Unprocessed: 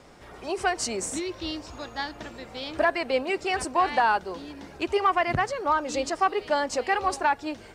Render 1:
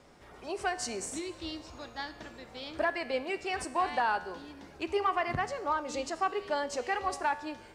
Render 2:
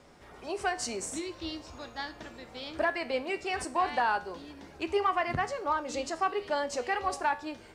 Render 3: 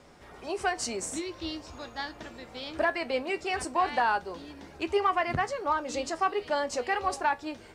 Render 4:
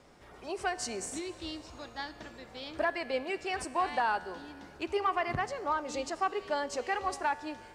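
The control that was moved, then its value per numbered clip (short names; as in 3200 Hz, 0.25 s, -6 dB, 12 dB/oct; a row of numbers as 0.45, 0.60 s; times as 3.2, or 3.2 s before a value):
resonator, decay: 0.98, 0.4, 0.17, 2.2 s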